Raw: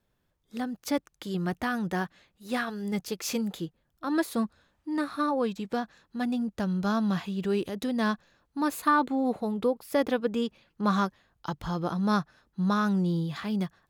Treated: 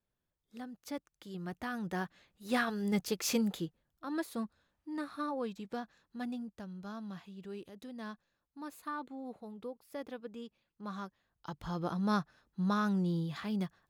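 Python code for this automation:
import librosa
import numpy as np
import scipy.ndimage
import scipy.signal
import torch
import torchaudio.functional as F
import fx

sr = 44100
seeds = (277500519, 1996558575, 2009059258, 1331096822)

y = fx.gain(x, sr, db=fx.line((1.33, -12.5), (2.59, -1.0), (3.47, -1.0), (4.07, -9.5), (6.28, -9.5), (6.68, -17.0), (10.95, -17.0), (11.81, -5.5)))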